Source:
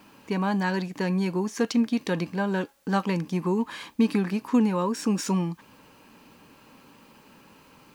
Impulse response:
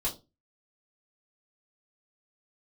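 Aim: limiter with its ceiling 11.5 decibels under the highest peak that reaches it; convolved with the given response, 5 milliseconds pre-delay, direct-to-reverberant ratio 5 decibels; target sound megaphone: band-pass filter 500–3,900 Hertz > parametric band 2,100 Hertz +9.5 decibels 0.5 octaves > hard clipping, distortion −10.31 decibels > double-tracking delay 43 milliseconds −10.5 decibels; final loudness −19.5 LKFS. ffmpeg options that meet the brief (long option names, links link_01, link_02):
-filter_complex "[0:a]alimiter=limit=-23dB:level=0:latency=1,asplit=2[link_01][link_02];[1:a]atrim=start_sample=2205,adelay=5[link_03];[link_02][link_03]afir=irnorm=-1:irlink=0,volume=-9.5dB[link_04];[link_01][link_04]amix=inputs=2:normalize=0,highpass=500,lowpass=3900,equalizer=frequency=2100:width_type=o:width=0.5:gain=9.5,asoftclip=type=hard:threshold=-33dB,asplit=2[link_05][link_06];[link_06]adelay=43,volume=-10.5dB[link_07];[link_05][link_07]amix=inputs=2:normalize=0,volume=18dB"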